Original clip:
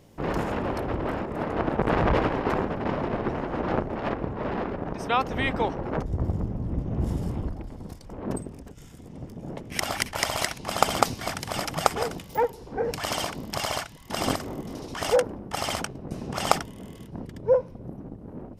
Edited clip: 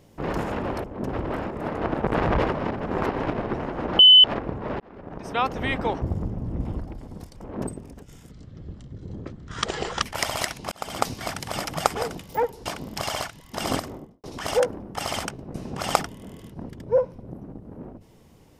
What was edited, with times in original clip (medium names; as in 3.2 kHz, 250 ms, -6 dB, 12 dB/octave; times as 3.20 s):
2.26–3.05 s: reverse
3.74–3.99 s: bleep 3.02 kHz -7.5 dBFS
4.55–5.17 s: fade in
5.77–6.20 s: delete
6.83–7.34 s: delete
8.11–8.36 s: copy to 0.84 s
9.00–10.03 s: speed 60%
10.72–11.15 s: fade in
12.66–13.22 s: delete
14.34–14.80 s: studio fade out